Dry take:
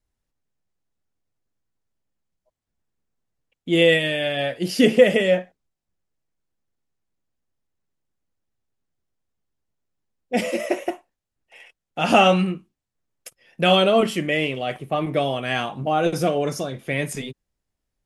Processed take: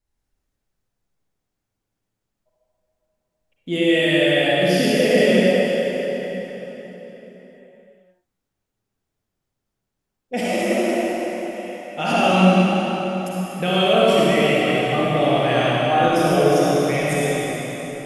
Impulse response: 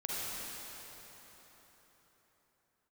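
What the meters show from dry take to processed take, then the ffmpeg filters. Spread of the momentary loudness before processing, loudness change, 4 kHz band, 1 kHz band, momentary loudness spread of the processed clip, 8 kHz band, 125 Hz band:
14 LU, +2.0 dB, +2.0 dB, +3.5 dB, 14 LU, +4.5 dB, +5.5 dB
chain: -filter_complex "[0:a]alimiter=limit=-12dB:level=0:latency=1[link_01];[1:a]atrim=start_sample=2205[link_02];[link_01][link_02]afir=irnorm=-1:irlink=0,volume=1.5dB"

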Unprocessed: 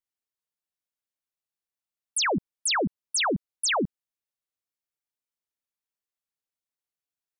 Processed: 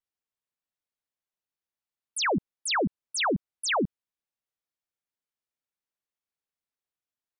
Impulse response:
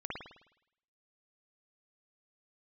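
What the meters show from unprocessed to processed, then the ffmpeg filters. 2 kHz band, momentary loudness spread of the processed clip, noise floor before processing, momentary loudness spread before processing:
−1.0 dB, 3 LU, below −85 dBFS, 3 LU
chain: -af "highshelf=frequency=5200:gain=-8.5"

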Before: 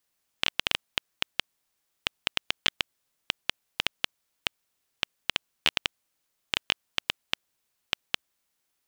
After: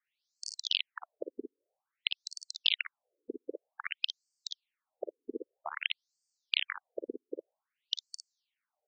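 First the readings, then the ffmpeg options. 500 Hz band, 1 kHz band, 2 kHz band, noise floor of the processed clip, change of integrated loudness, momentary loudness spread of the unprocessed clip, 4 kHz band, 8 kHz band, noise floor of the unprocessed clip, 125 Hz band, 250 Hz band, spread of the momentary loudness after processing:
+2.0 dB, −8.0 dB, −7.0 dB, below −85 dBFS, −5.0 dB, 7 LU, −4.5 dB, −6.0 dB, −78 dBFS, below −30 dB, 0.0 dB, 15 LU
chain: -af "lowshelf=frequency=760:width_type=q:width=1.5:gain=8,aecho=1:1:44|56:0.2|0.562,afftfilt=real='re*between(b*sr/1024,330*pow(6300/330,0.5+0.5*sin(2*PI*0.52*pts/sr))/1.41,330*pow(6300/330,0.5+0.5*sin(2*PI*0.52*pts/sr))*1.41)':imag='im*between(b*sr/1024,330*pow(6300/330,0.5+0.5*sin(2*PI*0.52*pts/sr))/1.41,330*pow(6300/330,0.5+0.5*sin(2*PI*0.52*pts/sr))*1.41)':win_size=1024:overlap=0.75"

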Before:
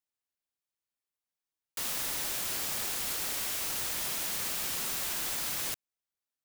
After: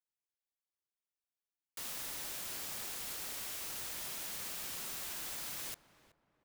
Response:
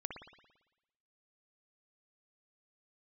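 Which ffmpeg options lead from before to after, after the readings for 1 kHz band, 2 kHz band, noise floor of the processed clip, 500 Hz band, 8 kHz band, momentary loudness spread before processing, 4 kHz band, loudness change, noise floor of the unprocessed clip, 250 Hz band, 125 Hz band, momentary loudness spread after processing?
−8.5 dB, −8.5 dB, below −85 dBFS, −8.5 dB, −8.5 dB, 2 LU, −8.5 dB, −8.5 dB, below −85 dBFS, −8.5 dB, −8.5 dB, 2 LU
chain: -filter_complex "[0:a]asplit=2[link_01][link_02];[link_02]adelay=376,lowpass=frequency=1300:poles=1,volume=-14.5dB,asplit=2[link_03][link_04];[link_04]adelay=376,lowpass=frequency=1300:poles=1,volume=0.39,asplit=2[link_05][link_06];[link_06]adelay=376,lowpass=frequency=1300:poles=1,volume=0.39,asplit=2[link_07][link_08];[link_08]adelay=376,lowpass=frequency=1300:poles=1,volume=0.39[link_09];[link_01][link_03][link_05][link_07][link_09]amix=inputs=5:normalize=0,volume=-8.5dB"

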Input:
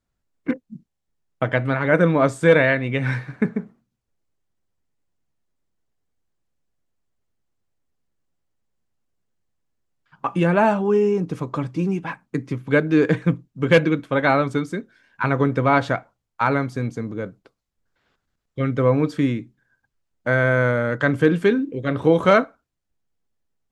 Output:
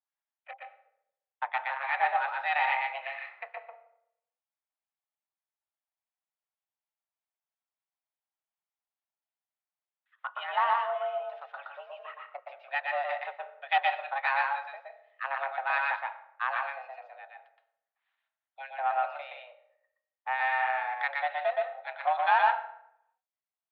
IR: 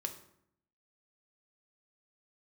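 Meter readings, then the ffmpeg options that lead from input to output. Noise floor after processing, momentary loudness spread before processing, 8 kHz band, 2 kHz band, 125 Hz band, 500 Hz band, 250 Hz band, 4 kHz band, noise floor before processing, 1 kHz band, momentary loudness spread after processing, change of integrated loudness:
below −85 dBFS, 13 LU, can't be measured, −7.0 dB, below −40 dB, −17.5 dB, below −40 dB, −6.5 dB, −79 dBFS, −2.0 dB, 18 LU, −9.5 dB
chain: -filter_complex "[0:a]acrossover=split=1100[link_01][link_02];[link_01]aeval=exprs='val(0)*(1-0.7/2+0.7/2*cos(2*PI*3.4*n/s))':channel_layout=same[link_03];[link_02]aeval=exprs='val(0)*(1-0.7/2-0.7/2*cos(2*PI*3.4*n/s))':channel_layout=same[link_04];[link_03][link_04]amix=inputs=2:normalize=0,aeval=exprs='0.596*(cos(1*acos(clip(val(0)/0.596,-1,1)))-cos(1*PI/2))+0.0335*(cos(7*acos(clip(val(0)/0.596,-1,1)))-cos(7*PI/2))':channel_layout=same,asplit=2[link_05][link_06];[1:a]atrim=start_sample=2205,adelay=120[link_07];[link_06][link_07]afir=irnorm=-1:irlink=0,volume=-0.5dB[link_08];[link_05][link_08]amix=inputs=2:normalize=0,highpass=frequency=440:width_type=q:width=0.5412,highpass=frequency=440:width_type=q:width=1.307,lowpass=frequency=3400:width_type=q:width=0.5176,lowpass=frequency=3400:width_type=q:width=0.7071,lowpass=frequency=3400:width_type=q:width=1.932,afreqshift=270,volume=-6dB"

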